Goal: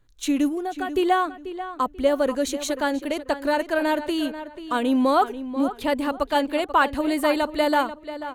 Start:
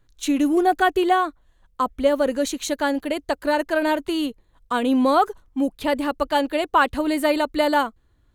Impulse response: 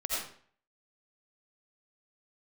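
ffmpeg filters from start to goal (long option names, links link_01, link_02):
-filter_complex "[0:a]asplit=3[link_01][link_02][link_03];[link_01]afade=type=out:start_time=0.48:duration=0.02[link_04];[link_02]acompressor=threshold=-25dB:ratio=5,afade=type=in:start_time=0.48:duration=0.02,afade=type=out:start_time=0.94:duration=0.02[link_05];[link_03]afade=type=in:start_time=0.94:duration=0.02[link_06];[link_04][link_05][link_06]amix=inputs=3:normalize=0,asplit=2[link_07][link_08];[link_08]adelay=488,lowpass=frequency=4000:poles=1,volume=-12dB,asplit=2[link_09][link_10];[link_10]adelay=488,lowpass=frequency=4000:poles=1,volume=0.28,asplit=2[link_11][link_12];[link_12]adelay=488,lowpass=frequency=4000:poles=1,volume=0.28[link_13];[link_07][link_09][link_11][link_13]amix=inputs=4:normalize=0,volume=-1.5dB"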